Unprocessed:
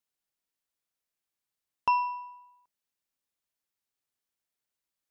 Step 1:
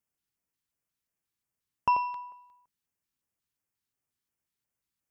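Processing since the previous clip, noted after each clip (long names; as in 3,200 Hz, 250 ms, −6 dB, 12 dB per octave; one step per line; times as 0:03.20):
auto-filter notch square 2.8 Hz 610–3,900 Hz
parametric band 99 Hz +9 dB 2.8 octaves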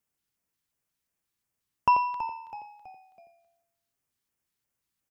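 echo with shifted repeats 326 ms, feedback 43%, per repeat −76 Hz, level −13 dB
level +3.5 dB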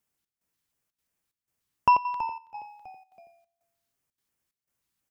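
gate pattern "xxx..xxxxxx.x" 183 BPM −12 dB
level +2 dB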